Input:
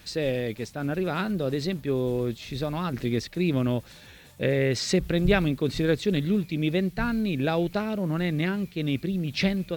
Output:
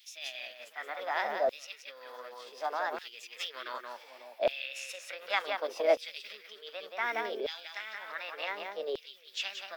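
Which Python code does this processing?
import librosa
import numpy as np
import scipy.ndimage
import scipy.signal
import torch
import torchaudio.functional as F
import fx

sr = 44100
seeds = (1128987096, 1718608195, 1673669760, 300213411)

y = scipy.signal.sosfilt(scipy.signal.butter(12, 210.0, 'highpass', fs=sr, output='sos'), x)
y = fx.peak_eq(y, sr, hz=5800.0, db=-12.0, octaves=1.7)
y = fx.echo_multitap(y, sr, ms=(177, 547), db=(-6.0, -19.5))
y = fx.formant_shift(y, sr, semitones=5)
y = fx.filter_lfo_highpass(y, sr, shape='saw_down', hz=0.67, low_hz=580.0, high_hz=3400.0, q=1.8)
y = y * librosa.db_to_amplitude(-3.5)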